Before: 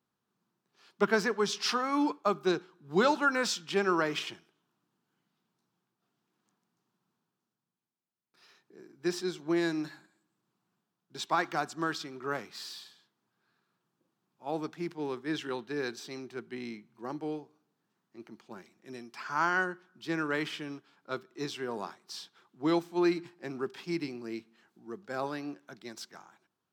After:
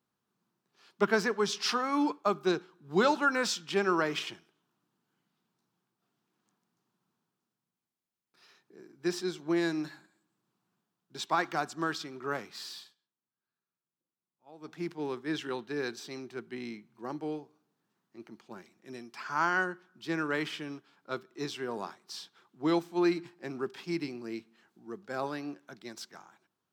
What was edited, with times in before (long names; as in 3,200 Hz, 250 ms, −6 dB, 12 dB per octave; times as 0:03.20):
0:12.79–0:14.76: duck −18.5 dB, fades 0.16 s